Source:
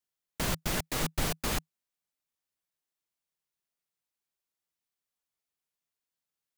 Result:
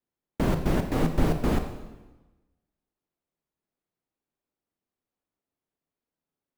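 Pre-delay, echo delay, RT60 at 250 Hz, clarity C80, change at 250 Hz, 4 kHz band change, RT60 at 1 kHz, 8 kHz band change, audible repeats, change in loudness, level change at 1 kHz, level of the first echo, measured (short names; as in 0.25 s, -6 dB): 24 ms, none, 1.2 s, 10.0 dB, +11.5 dB, -6.5 dB, 1.1 s, -10.0 dB, none, +5.0 dB, +4.5 dB, none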